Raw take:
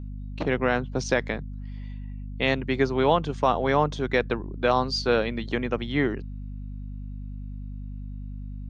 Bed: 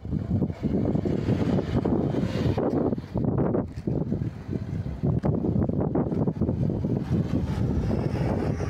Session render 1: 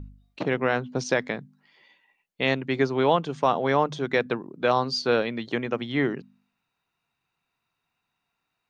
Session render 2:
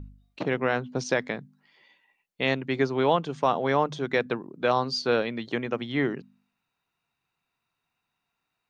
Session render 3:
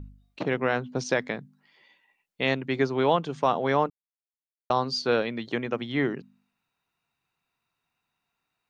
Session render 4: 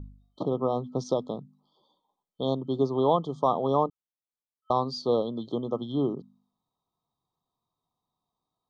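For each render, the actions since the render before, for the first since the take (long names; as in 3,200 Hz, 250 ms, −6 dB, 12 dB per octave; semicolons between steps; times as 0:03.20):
hum removal 50 Hz, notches 5
level −1.5 dB
0:03.90–0:04.70: silence
brick-wall band-stop 1,300–3,100 Hz; high-shelf EQ 3,200 Hz −10 dB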